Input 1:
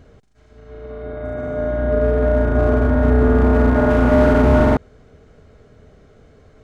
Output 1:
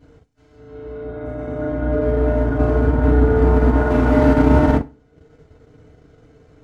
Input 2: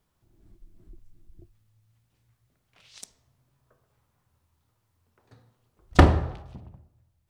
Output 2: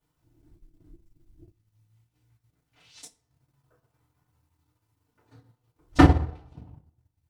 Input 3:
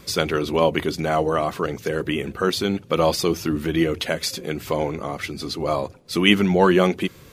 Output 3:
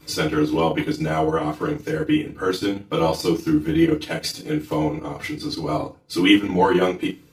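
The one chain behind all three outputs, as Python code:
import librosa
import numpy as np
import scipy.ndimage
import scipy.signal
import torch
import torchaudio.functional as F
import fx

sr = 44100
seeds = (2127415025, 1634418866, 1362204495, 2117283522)

y = fx.rev_fdn(x, sr, rt60_s=0.32, lf_ratio=1.2, hf_ratio=0.9, size_ms=20.0, drr_db=-8.5)
y = fx.transient(y, sr, attack_db=0, sustain_db=-8)
y = y * librosa.db_to_amplitude(-10.0)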